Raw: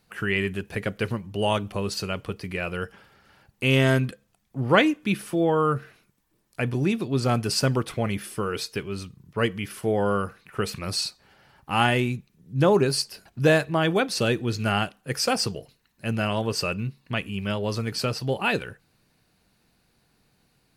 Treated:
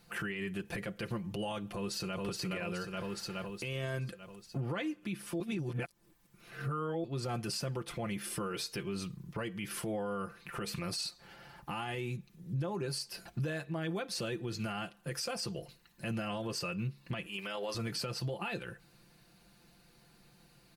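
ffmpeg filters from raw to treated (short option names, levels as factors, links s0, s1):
-filter_complex "[0:a]asplit=2[s0][s1];[s1]afade=t=in:st=1.67:d=0.01,afade=t=out:st=2.23:d=0.01,aecho=0:1:420|840|1260|1680|2100|2520|2940|3360:0.562341|0.337405|0.202443|0.121466|0.0728794|0.0437277|0.0262366|0.015742[s2];[s0][s2]amix=inputs=2:normalize=0,asettb=1/sr,asplit=3[s3][s4][s5];[s3]atrim=end=17.264[s6];[s4]atrim=start=17.26:end=17.75,asetpts=PTS-STARTPTS,afade=t=in:d=0.004:c=qsin,afade=t=out:st=0.486:d=0.004:c=qsin,highpass=510[s7];[s5]atrim=start=17.746[s8];[s6][s7]acrossfade=d=0.004:c1=hsin:c2=qsin[s9];[s9][s8]acrossfade=d=0.004:c1=qsin:c2=hsin,asplit=3[s10][s11][s12];[s10]atrim=end=5.402[s13];[s11]atrim=start=5.398:end=7.042,asetpts=PTS-STARTPTS,areverse[s14];[s12]atrim=start=7.038[s15];[s13][s14]acrossfade=d=0.004:c1=hsin:c2=hsin[s16];[s16][s15]acrossfade=d=0.004:c1=hsin:c2=hsin,aecho=1:1:5.8:0.63,acompressor=threshold=0.0224:ratio=12,alimiter=level_in=2:limit=0.0631:level=0:latency=1:release=15,volume=0.501,volume=1.19"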